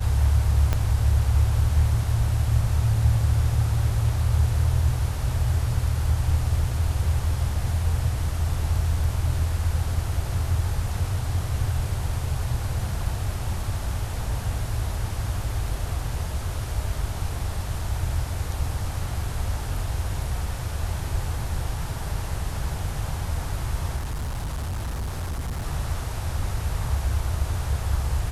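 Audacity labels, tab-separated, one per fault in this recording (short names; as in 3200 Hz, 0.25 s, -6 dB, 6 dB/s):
0.730000	0.730000	pop -10 dBFS
23.960000	25.660000	clipped -25.5 dBFS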